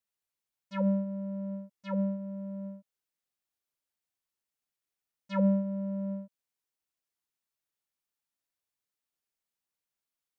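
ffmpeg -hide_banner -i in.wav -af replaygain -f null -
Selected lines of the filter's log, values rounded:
track_gain = +14.8 dB
track_peak = 0.097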